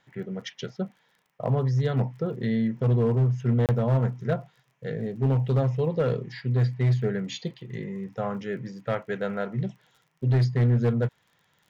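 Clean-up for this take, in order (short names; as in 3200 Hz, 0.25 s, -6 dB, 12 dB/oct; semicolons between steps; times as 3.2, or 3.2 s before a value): clip repair -17 dBFS; de-click; interpolate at 3.66, 28 ms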